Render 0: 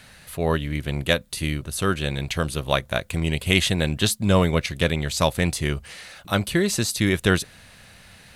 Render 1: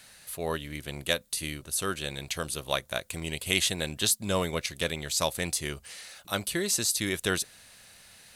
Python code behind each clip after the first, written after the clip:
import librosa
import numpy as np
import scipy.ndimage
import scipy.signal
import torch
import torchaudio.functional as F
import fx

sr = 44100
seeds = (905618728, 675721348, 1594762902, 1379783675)

y = fx.bass_treble(x, sr, bass_db=-7, treble_db=9)
y = y * librosa.db_to_amplitude(-7.5)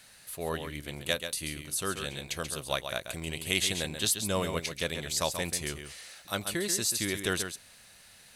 y = x + 10.0 ** (-8.0 / 20.0) * np.pad(x, (int(135 * sr / 1000.0), 0))[:len(x)]
y = y * librosa.db_to_amplitude(-2.5)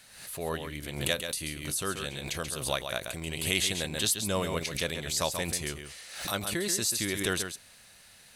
y = fx.pre_swell(x, sr, db_per_s=72.0)